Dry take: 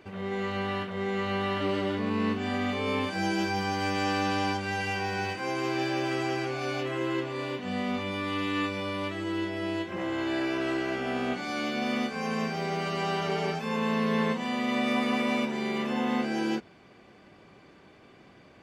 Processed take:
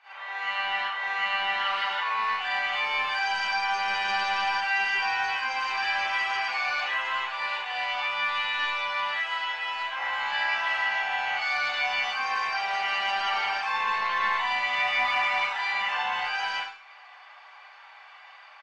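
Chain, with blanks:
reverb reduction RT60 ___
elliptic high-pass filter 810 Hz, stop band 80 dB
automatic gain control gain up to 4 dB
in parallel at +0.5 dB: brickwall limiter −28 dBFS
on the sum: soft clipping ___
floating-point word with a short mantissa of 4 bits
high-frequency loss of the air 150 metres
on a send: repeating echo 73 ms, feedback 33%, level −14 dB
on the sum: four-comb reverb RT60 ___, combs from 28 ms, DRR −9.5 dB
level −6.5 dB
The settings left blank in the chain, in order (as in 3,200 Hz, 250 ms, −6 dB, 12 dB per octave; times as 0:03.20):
0.5 s, −20 dBFS, 0.52 s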